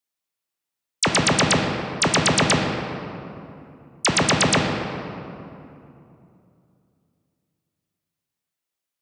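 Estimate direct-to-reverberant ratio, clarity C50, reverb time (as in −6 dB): 1.0 dB, 3.0 dB, 2.8 s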